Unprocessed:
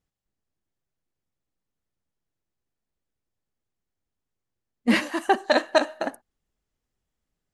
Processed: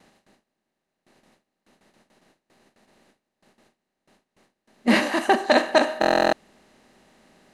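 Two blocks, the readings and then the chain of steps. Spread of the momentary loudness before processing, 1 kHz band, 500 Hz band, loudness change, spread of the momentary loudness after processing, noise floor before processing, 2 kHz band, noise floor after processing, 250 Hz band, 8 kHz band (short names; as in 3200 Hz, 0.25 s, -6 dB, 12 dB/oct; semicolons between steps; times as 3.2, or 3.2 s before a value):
11 LU, +4.0 dB, +4.0 dB, +3.0 dB, 6 LU, -85 dBFS, +3.5 dB, -82 dBFS, +2.5 dB, +3.5 dB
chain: per-bin compression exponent 0.6; gate with hold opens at -49 dBFS; stuck buffer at 6, samples 1024, times 13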